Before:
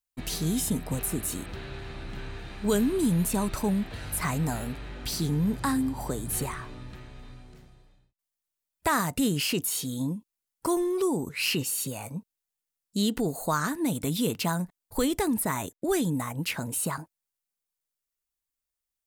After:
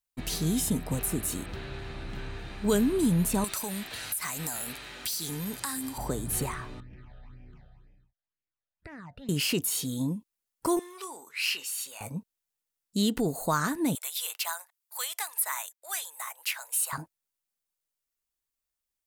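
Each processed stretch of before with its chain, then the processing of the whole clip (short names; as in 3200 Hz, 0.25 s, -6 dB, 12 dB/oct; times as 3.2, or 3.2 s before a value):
3.44–5.98 tilt +4 dB/oct + compressor, threshold -29 dBFS
6.8–9.29 LPF 2400 Hz + phaser stages 8, 2 Hz, lowest notch 290–1200 Hz + compressor 4:1, threshold -44 dBFS
10.79–12.01 HPF 1200 Hz + high shelf 6000 Hz -6 dB + doubler 26 ms -11 dB
13.95–16.93 Bessel high-pass 1200 Hz, order 8 + bell 15000 Hz +5 dB 0.88 oct
whole clip: dry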